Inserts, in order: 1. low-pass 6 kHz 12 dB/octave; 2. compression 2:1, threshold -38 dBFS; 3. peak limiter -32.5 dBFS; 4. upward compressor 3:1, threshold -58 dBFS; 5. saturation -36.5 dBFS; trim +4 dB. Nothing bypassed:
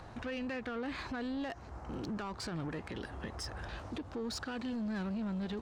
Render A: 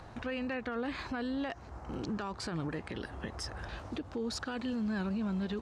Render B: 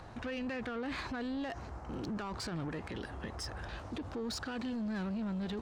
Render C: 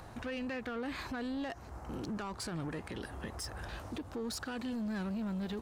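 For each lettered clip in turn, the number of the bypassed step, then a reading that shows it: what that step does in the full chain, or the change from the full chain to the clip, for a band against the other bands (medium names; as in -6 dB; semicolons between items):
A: 5, distortion -16 dB; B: 2, mean gain reduction 5.0 dB; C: 1, 8 kHz band +3.0 dB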